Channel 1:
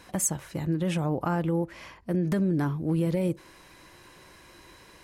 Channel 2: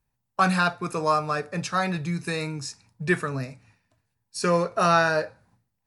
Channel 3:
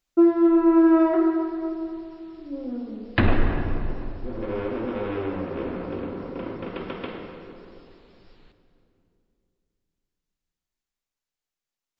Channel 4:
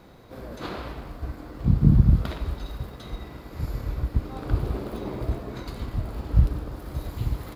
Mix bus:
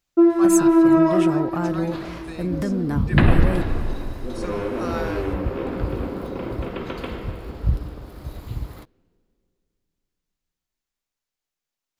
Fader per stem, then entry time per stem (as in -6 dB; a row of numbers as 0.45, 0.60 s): +0.5, -12.5, +2.0, -2.5 dB; 0.30, 0.00, 0.00, 1.30 s